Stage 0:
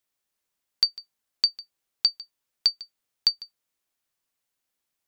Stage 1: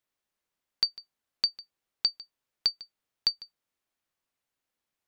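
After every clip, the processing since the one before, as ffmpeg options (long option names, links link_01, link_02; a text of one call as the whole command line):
ffmpeg -i in.wav -af "highshelf=frequency=4200:gain=-8.5" out.wav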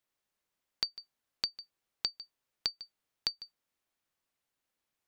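ffmpeg -i in.wav -af "acompressor=threshold=-30dB:ratio=6" out.wav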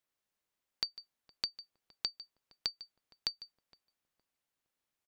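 ffmpeg -i in.wav -filter_complex "[0:a]asplit=2[link_01][link_02];[link_02]adelay=464,lowpass=frequency=1000:poles=1,volume=-18.5dB,asplit=2[link_03][link_04];[link_04]adelay=464,lowpass=frequency=1000:poles=1,volume=0.35,asplit=2[link_05][link_06];[link_06]adelay=464,lowpass=frequency=1000:poles=1,volume=0.35[link_07];[link_01][link_03][link_05][link_07]amix=inputs=4:normalize=0,volume=-2.5dB" out.wav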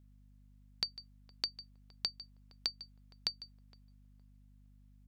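ffmpeg -i in.wav -af "aeval=exprs='val(0)+0.001*(sin(2*PI*50*n/s)+sin(2*PI*2*50*n/s)/2+sin(2*PI*3*50*n/s)/3+sin(2*PI*4*50*n/s)/4+sin(2*PI*5*50*n/s)/5)':channel_layout=same" out.wav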